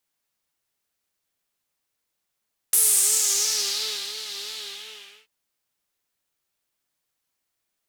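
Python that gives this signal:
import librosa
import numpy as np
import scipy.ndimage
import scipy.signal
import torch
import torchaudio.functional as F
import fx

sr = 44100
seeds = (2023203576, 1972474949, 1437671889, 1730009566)

y = fx.sub_patch_vibrato(sr, seeds[0], note=68, wave='triangle', wave2='saw', interval_st=0, detune_cents=16, level2_db=-7, sub_db=-15.0, noise_db=-2.0, kind='bandpass', cutoff_hz=2700.0, q=2.9, env_oct=2.0, env_decay_s=1.14, env_sustain_pct=30, attack_ms=2.6, decay_s=1.4, sustain_db=-14.5, release_s=0.78, note_s=1.76, lfo_hz=2.9, vibrato_cents=84)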